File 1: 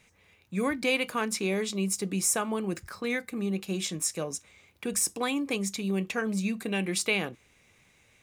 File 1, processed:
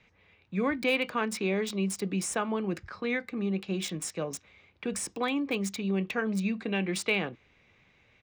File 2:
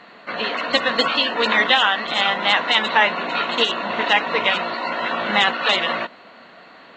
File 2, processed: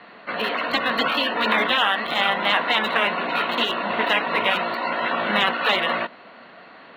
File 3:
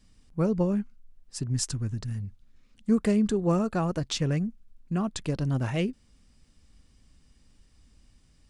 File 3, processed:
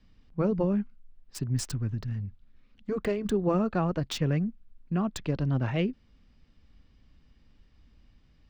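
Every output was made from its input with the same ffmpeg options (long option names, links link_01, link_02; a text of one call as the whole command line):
ffmpeg -i in.wav -filter_complex "[0:a]aresample=22050,aresample=44100,acrossover=split=230|1400|4600[link_01][link_02][link_03][link_04];[link_04]aeval=exprs='val(0)*gte(abs(val(0)),0.0178)':channel_layout=same[link_05];[link_01][link_02][link_03][link_05]amix=inputs=4:normalize=0,afftfilt=real='re*lt(hypot(re,im),0.794)':imag='im*lt(hypot(re,im),0.794)':win_size=1024:overlap=0.75,acrossover=split=3200[link_06][link_07];[link_07]acompressor=threshold=-31dB:ratio=4:attack=1:release=60[link_08];[link_06][link_08]amix=inputs=2:normalize=0" out.wav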